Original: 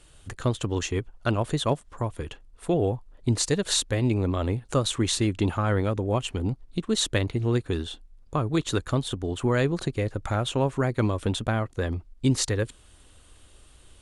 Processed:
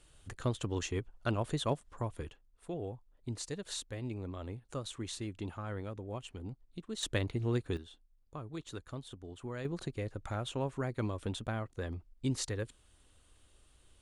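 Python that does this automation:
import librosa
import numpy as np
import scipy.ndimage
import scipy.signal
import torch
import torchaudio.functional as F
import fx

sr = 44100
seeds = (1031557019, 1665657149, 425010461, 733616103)

y = fx.gain(x, sr, db=fx.steps((0.0, -8.0), (2.3, -16.0), (7.03, -8.0), (7.77, -18.0), (9.65, -11.0)))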